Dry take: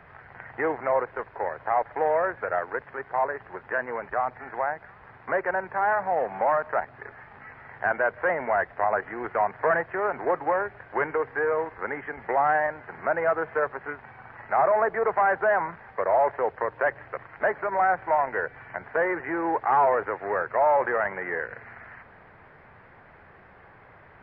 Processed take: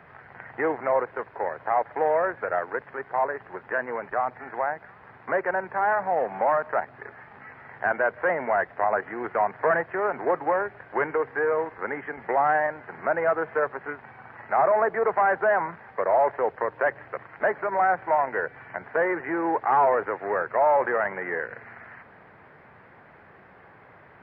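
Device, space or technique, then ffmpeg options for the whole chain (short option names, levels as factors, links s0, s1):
filter by subtraction: -filter_complex "[0:a]asplit=2[s0][s1];[s1]lowpass=200,volume=-1[s2];[s0][s2]amix=inputs=2:normalize=0"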